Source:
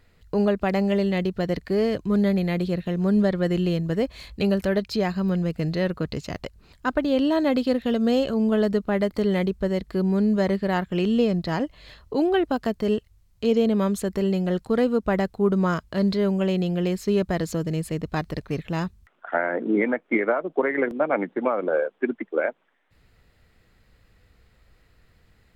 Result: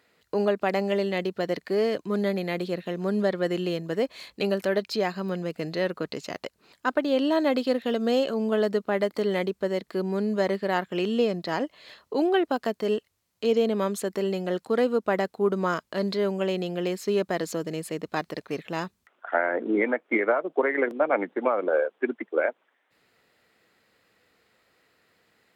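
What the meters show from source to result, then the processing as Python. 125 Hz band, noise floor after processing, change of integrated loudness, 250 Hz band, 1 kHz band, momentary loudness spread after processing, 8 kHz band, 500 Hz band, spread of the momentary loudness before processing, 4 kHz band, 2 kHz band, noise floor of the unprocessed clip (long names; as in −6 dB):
−9.0 dB, −72 dBFS, −3.0 dB, −6.0 dB, 0.0 dB, 7 LU, 0.0 dB, −1.0 dB, 7 LU, 0.0 dB, 0.0 dB, −61 dBFS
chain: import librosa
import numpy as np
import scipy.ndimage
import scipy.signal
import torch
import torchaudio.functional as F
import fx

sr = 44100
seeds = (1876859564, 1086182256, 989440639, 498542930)

y = scipy.signal.sosfilt(scipy.signal.butter(2, 300.0, 'highpass', fs=sr, output='sos'), x)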